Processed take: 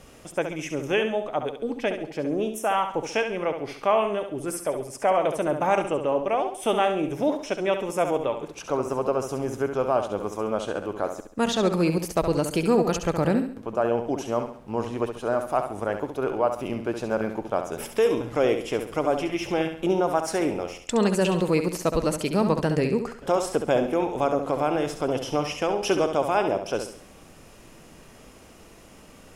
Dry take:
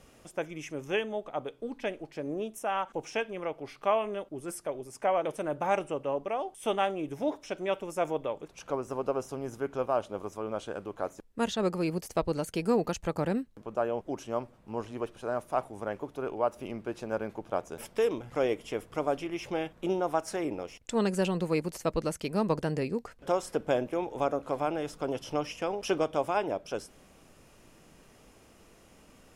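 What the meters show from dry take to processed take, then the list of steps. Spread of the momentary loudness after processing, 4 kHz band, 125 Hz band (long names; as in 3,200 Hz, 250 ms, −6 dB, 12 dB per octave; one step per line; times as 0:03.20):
7 LU, +7.5 dB, +7.5 dB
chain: in parallel at −1 dB: brickwall limiter −23 dBFS, peak gain reduction 9 dB
on the sum: flutter between parallel walls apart 11.7 metres, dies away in 0.51 s
level +2 dB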